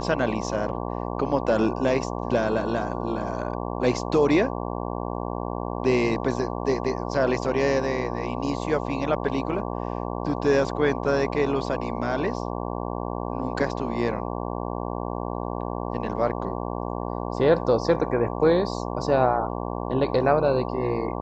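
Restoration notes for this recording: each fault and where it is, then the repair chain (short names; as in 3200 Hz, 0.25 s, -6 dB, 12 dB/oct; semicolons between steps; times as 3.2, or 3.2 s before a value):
buzz 60 Hz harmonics 19 -30 dBFS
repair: de-hum 60 Hz, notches 19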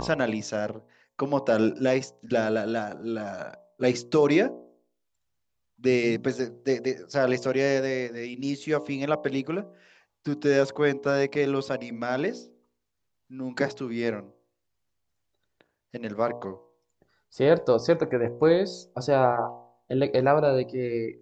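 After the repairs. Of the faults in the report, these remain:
none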